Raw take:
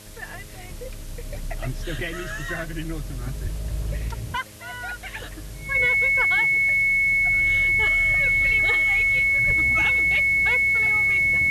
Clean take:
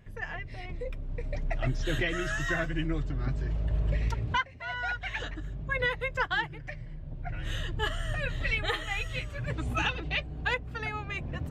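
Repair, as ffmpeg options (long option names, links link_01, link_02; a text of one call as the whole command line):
ffmpeg -i in.wav -filter_complex "[0:a]bandreject=frequency=105:width_type=h:width=4,bandreject=frequency=210:width_type=h:width=4,bandreject=frequency=315:width_type=h:width=4,bandreject=frequency=420:width_type=h:width=4,bandreject=frequency=525:width_type=h:width=4,bandreject=frequency=630:width_type=h:width=4,bandreject=frequency=2200:width=30,asplit=3[link_01][link_02][link_03];[link_01]afade=type=out:start_time=3.43:duration=0.02[link_04];[link_02]highpass=frequency=140:width=0.5412,highpass=frequency=140:width=1.3066,afade=type=in:start_time=3.43:duration=0.02,afade=type=out:start_time=3.55:duration=0.02[link_05];[link_03]afade=type=in:start_time=3.55:duration=0.02[link_06];[link_04][link_05][link_06]amix=inputs=3:normalize=0,asplit=3[link_07][link_08][link_09];[link_07]afade=type=out:start_time=9.46:duration=0.02[link_10];[link_08]highpass=frequency=140:width=0.5412,highpass=frequency=140:width=1.3066,afade=type=in:start_time=9.46:duration=0.02,afade=type=out:start_time=9.58:duration=0.02[link_11];[link_09]afade=type=in:start_time=9.58:duration=0.02[link_12];[link_10][link_11][link_12]amix=inputs=3:normalize=0,afwtdn=0.0056" out.wav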